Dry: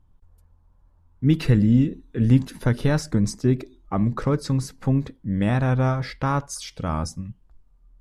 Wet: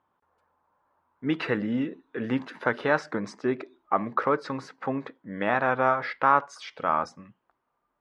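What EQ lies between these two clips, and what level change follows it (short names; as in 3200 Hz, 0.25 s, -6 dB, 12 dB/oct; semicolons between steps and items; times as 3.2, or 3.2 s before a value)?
HPF 470 Hz 12 dB/oct; LPF 2500 Hz 12 dB/oct; bell 1300 Hz +5 dB 1.5 oct; +2.5 dB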